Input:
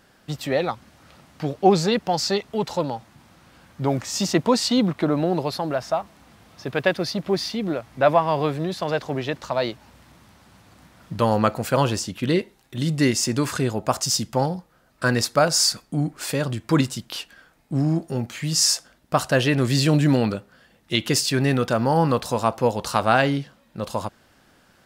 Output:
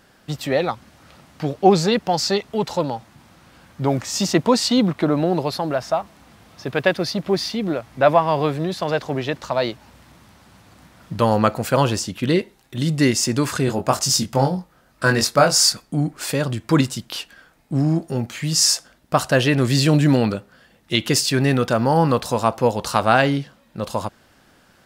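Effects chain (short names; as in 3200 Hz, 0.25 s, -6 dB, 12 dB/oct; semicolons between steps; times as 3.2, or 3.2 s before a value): 13.65–15.7 doubler 22 ms -4 dB; gain +2.5 dB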